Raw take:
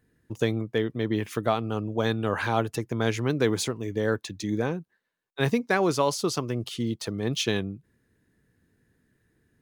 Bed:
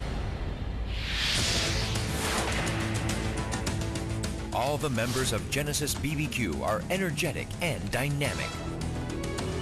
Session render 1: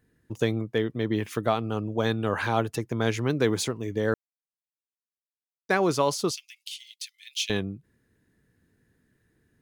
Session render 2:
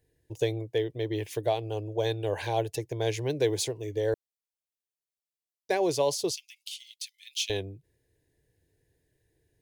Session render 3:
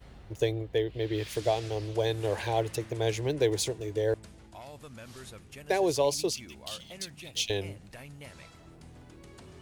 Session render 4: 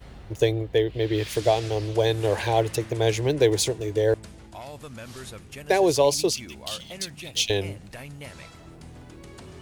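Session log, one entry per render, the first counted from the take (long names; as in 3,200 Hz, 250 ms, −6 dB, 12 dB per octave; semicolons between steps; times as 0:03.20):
0:04.14–0:05.69: silence; 0:06.31–0:07.50: Butterworth high-pass 2,200 Hz 48 dB per octave
phaser with its sweep stopped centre 530 Hz, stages 4
mix in bed −18 dB
level +6.5 dB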